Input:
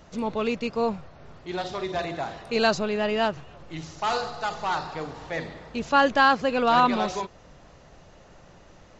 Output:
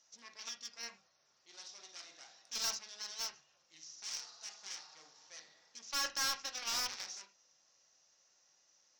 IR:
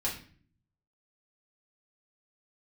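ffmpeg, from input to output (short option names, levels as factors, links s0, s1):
-filter_complex "[0:a]aeval=exprs='0.422*(cos(1*acos(clip(val(0)/0.422,-1,1)))-cos(1*PI/2))+0.0335*(cos(6*acos(clip(val(0)/0.422,-1,1)))-cos(6*PI/2))+0.0841*(cos(7*acos(clip(val(0)/0.422,-1,1)))-cos(7*PI/2))':c=same,bandpass=f=5700:t=q:w=5.9:csg=0,asoftclip=type=tanh:threshold=0.0106,asplit=2[s0][s1];[1:a]atrim=start_sample=2205,atrim=end_sample=4410,lowpass=2300[s2];[s1][s2]afir=irnorm=-1:irlink=0,volume=0.562[s3];[s0][s3]amix=inputs=2:normalize=0,volume=2.82"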